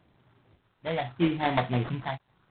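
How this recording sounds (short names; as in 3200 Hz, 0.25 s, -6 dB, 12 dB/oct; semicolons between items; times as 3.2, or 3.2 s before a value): phasing stages 8, 0.8 Hz, lowest notch 370–2300 Hz; random-step tremolo; aliases and images of a low sample rate 2700 Hz, jitter 20%; G.726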